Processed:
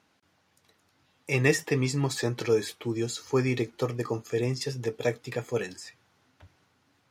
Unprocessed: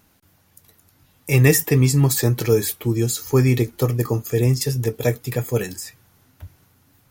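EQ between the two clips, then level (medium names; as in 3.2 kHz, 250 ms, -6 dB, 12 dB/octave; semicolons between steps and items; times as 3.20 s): high-pass 350 Hz 6 dB/octave; low-pass 5.1 kHz 12 dB/octave; -4.0 dB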